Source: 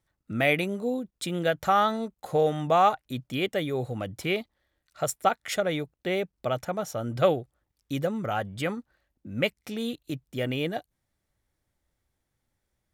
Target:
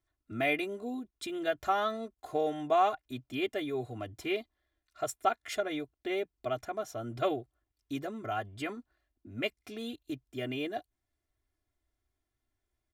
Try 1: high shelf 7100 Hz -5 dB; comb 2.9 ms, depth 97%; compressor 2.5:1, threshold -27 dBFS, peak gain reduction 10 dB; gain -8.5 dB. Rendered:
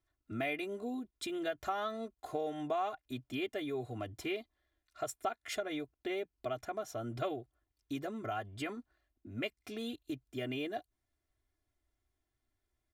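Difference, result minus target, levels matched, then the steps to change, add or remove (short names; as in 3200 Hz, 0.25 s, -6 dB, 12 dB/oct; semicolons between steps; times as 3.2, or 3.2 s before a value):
compressor: peak gain reduction +10 dB
remove: compressor 2.5:1, threshold -27 dBFS, peak gain reduction 10 dB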